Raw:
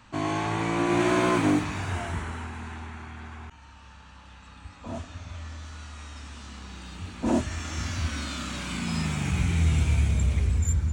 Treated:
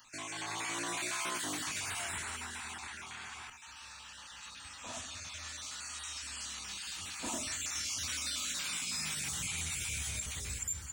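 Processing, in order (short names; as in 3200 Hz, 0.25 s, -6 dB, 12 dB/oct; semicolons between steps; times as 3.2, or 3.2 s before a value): random spectral dropouts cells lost 21%; pre-emphasis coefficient 0.97; in parallel at +2.5 dB: compressor, threshold -55 dBFS, peak gain reduction 21.5 dB; on the sum: limiter -34.5 dBFS, peak gain reduction 10.5 dB; AGC gain up to 5 dB; on a send at -10 dB: reverb RT60 0.45 s, pre-delay 6 ms; on the sum: gain +1.5 dB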